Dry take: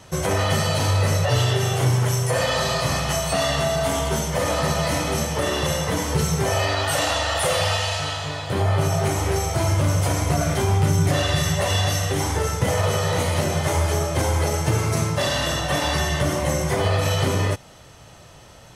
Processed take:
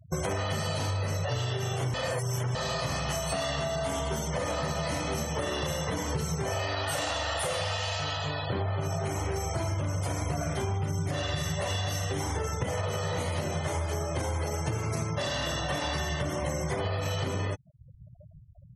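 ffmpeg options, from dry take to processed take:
-filter_complex "[0:a]asplit=3[s0][s1][s2];[s0]atrim=end=1.942[s3];[s1]atrim=start=1.938:end=2.552,asetpts=PTS-STARTPTS,areverse[s4];[s2]atrim=start=2.548[s5];[s3][s4]acrossfade=d=0.004:c1=hsin:c2=hsin[s6];[s6][s5]acrossfade=d=0.004:c1=hsin:c2=hsin,afftfilt=real='re*gte(hypot(re,im),0.0251)':imag='im*gte(hypot(re,im),0.0251)':win_size=1024:overlap=0.75,acompressor=threshold=0.0398:ratio=6"

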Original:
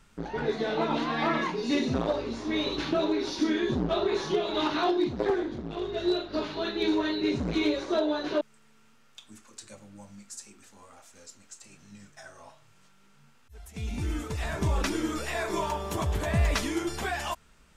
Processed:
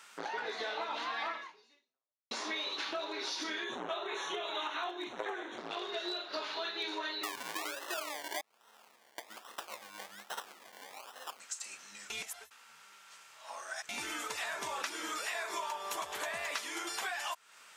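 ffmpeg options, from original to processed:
-filter_complex "[0:a]asettb=1/sr,asplit=3[s0][s1][s2];[s0]atrim=end=3.644[s3];[s1]atrim=start=3.64:end=5.58,asetpts=PTS-STARTPTS,afade=t=in:d=0.004:c=qsin,afade=t=out:st=1.936:d=0.004:c=qsin,asuperstop=centerf=4800:order=4:qfactor=2.3[s4];[s2]atrim=start=5.576[s5];[s3][s4]acrossfade=d=0.004:c1=hsin:c2=qsin[s6];[s6][s5]acrossfade=d=0.004:c1=qsin:c2=hsin,asettb=1/sr,asplit=3[s7][s8][s9];[s7]atrim=end=7.234[s10];[s8]atrim=start=7.23:end=11.4,asetpts=PTS-STARTPTS,afade=t=in:d=0.004:c=qsin,afade=t=out:st=4.166:d=0.004:c=qsin,acrusher=samples=27:mix=1:aa=0.000001:lfo=1:lforange=16.2:lforate=1.2[s11];[s9]atrim=start=11.396[s12];[s10][s11]acrossfade=d=0.004:c1=hsin:c2=qsin[s13];[s13][s12]acrossfade=d=0.004:c1=qsin:c2=hsin,asplit=4[s14][s15][s16][s17];[s14]atrim=end=2.31,asetpts=PTS-STARTPTS,afade=t=out:st=1.31:d=1:c=exp[s18];[s15]atrim=start=2.31:end=12.102,asetpts=PTS-STARTPTS,afade=t=in:d=0.004:c=hsin[s19];[s16]atrim=start=12.098:end=13.892,asetpts=PTS-STARTPTS,areverse[s20];[s17]atrim=start=13.888[s21];[s18][s19]concat=n=2:v=0:a=1[s22];[s22][s20]acrossfade=d=0.004:c1=hsin:c2=hsin[s23];[s23][s21]acrossfade=d=0.004:c1=hsin:c2=hsin,highpass=880,acompressor=threshold=0.00562:ratio=6,volume=2.82"

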